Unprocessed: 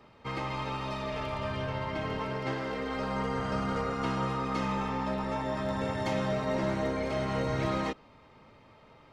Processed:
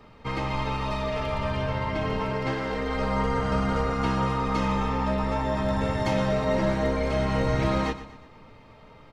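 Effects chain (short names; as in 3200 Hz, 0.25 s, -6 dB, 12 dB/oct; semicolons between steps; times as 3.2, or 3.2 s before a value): low shelf 84 Hz +10.5 dB; feedback echo 0.12 s, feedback 43%, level -13.5 dB; reverb, pre-delay 4 ms, DRR 10.5 dB; gain +4 dB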